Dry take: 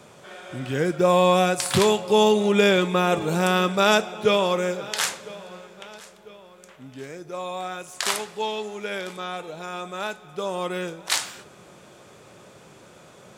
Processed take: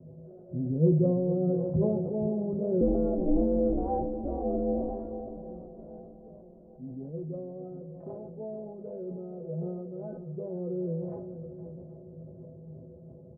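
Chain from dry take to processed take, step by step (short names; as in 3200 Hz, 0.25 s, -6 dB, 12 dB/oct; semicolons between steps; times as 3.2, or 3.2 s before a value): Chebyshev low-pass 600 Hz, order 4; bell 110 Hz +15 dB 1.9 oct; limiter -12 dBFS, peak gain reduction 11 dB; metallic resonator 75 Hz, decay 0.32 s, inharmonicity 0.03; 2.81–5.37 ring modulator 140 Hz; doubler 18 ms -8 dB; swung echo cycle 0.777 s, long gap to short 1.5:1, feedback 36%, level -11 dB; sustainer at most 32 dB/s; gain +2.5 dB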